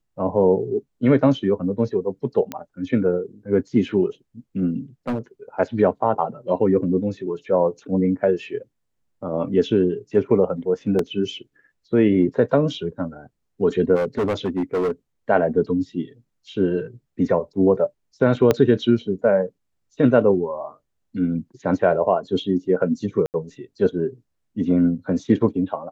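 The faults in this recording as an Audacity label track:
2.520000	2.520000	pop -13 dBFS
5.080000	5.190000	clipped -19.5 dBFS
10.990000	10.990000	dropout 2.8 ms
13.950000	14.910000	clipped -18 dBFS
18.510000	18.510000	pop -5 dBFS
23.260000	23.340000	dropout 79 ms

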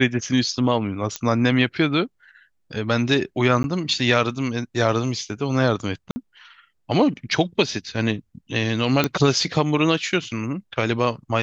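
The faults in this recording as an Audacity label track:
1.160000	1.160000	pop -9 dBFS
3.630000	3.640000	dropout 11 ms
6.110000	6.160000	dropout 50 ms
9.040000	9.040000	pop -5 dBFS

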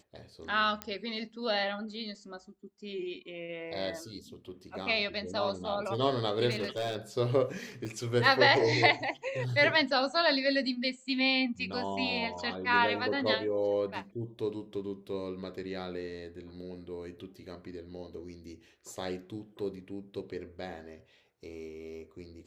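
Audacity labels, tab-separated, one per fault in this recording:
0.820000	0.820000	pop -18 dBFS
6.500000	6.960000	clipped -28.5 dBFS
7.850000	7.850000	dropout 2.4 ms

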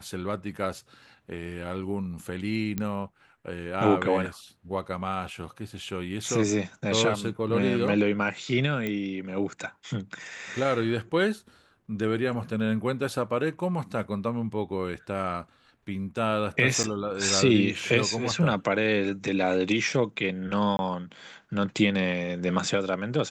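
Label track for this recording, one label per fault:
2.780000	2.780000	pop -15 dBFS
8.870000	8.870000	pop -17 dBFS
16.830000	16.840000	dropout 7.9 ms
20.770000	20.790000	dropout 21 ms

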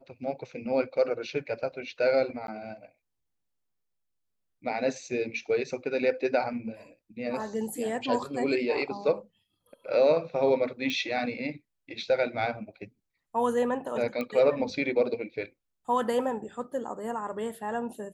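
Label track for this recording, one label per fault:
2.470000	2.480000	dropout
10.900000	10.900000	pop -19 dBFS
14.210000	14.210000	pop -20 dBFS

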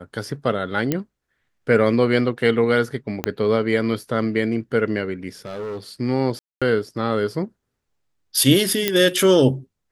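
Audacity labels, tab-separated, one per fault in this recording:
0.920000	0.920000	pop -7 dBFS
3.240000	3.240000	pop -7 dBFS
5.450000	5.790000	clipped -26.5 dBFS
6.390000	6.620000	dropout 226 ms
8.880000	8.880000	pop -3 dBFS

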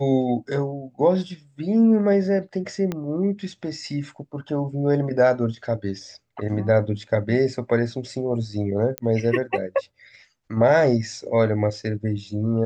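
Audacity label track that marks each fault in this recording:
2.920000	2.920000	pop -14 dBFS
8.980000	8.980000	pop -11 dBFS

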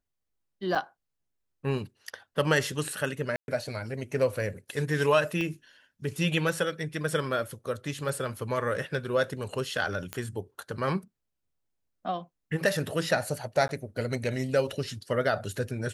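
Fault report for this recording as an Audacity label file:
0.750000	0.760000	dropout 5 ms
3.360000	3.480000	dropout 121 ms
5.410000	5.410000	pop -20 dBFS
10.130000	10.130000	pop -16 dBFS
13.680000	13.690000	dropout 11 ms

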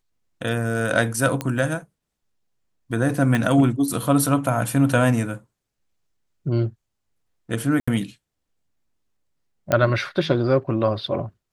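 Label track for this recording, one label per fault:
1.410000	1.410000	pop -11 dBFS
3.350000	3.350000	pop -11 dBFS
7.800000	7.880000	dropout 75 ms
9.720000	9.720000	pop -7 dBFS

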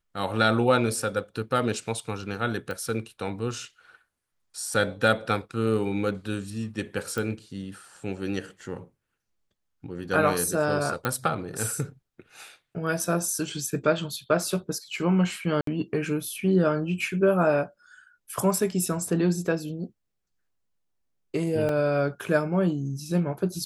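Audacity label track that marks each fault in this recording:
2.710000	2.710000	pop -20 dBFS
7.180000	7.180000	pop
11.050000	11.050000	pop -12 dBFS
15.610000	15.670000	dropout 63 ms
21.690000	21.690000	dropout 2 ms

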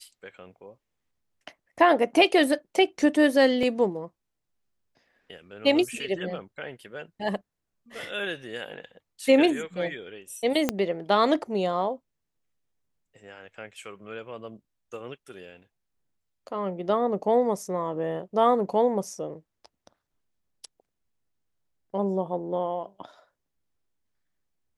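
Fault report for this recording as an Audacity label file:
3.630000	3.630000	dropout 2.9 ms
10.690000	10.690000	pop -9 dBFS

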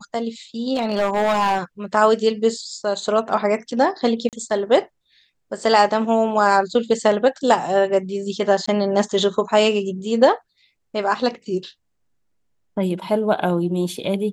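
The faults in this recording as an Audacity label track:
0.740000	1.590000	clipped -14.5 dBFS
4.290000	4.330000	dropout 38 ms
8.660000	8.680000	dropout 15 ms

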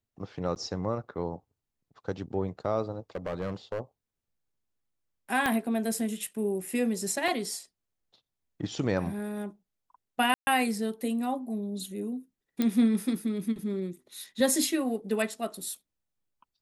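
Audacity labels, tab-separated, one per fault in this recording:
0.550000	0.560000	dropout 9.5 ms
3.150000	3.810000	clipped -27.5 dBFS
5.460000	5.460000	pop -13 dBFS
7.280000	7.280000	dropout 2.9 ms
10.340000	10.470000	dropout 130 ms
12.620000	12.620000	pop -14 dBFS

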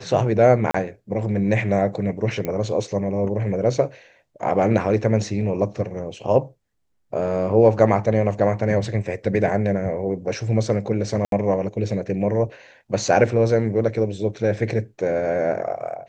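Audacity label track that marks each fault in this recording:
0.710000	0.740000	dropout 34 ms
2.450000	2.450000	pop -13 dBFS
11.250000	11.320000	dropout 72 ms

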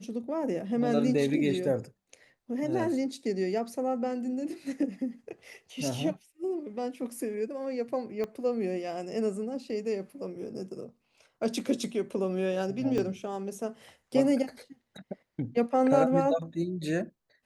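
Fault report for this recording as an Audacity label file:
8.240000	8.240000	pop -22 dBFS
12.980000	12.980000	dropout 3.7 ms

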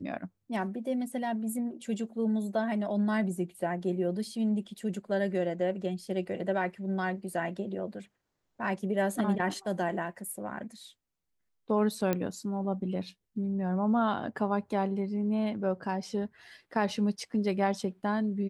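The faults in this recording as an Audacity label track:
12.130000	12.130000	pop -15 dBFS

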